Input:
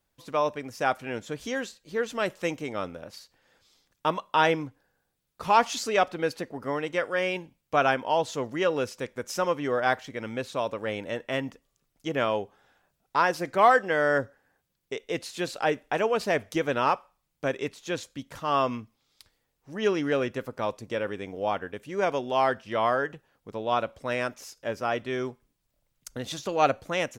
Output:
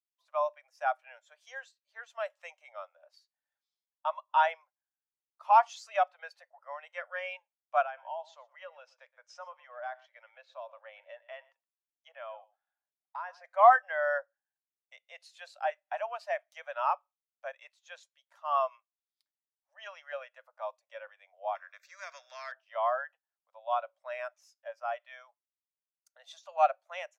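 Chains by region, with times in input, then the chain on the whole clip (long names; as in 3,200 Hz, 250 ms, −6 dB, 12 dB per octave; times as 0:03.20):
0:07.82–0:13.44: low-pass filter 5,400 Hz + downward compressor 3 to 1, threshold −28 dBFS + single-tap delay 119 ms −15 dB
0:21.55–0:22.52: phaser with its sweep stopped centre 3,000 Hz, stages 6 + every bin compressed towards the loudest bin 2 to 1
whole clip: Butterworth high-pass 580 Hz 72 dB per octave; de-essing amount 65%; every bin expanded away from the loudest bin 1.5 to 1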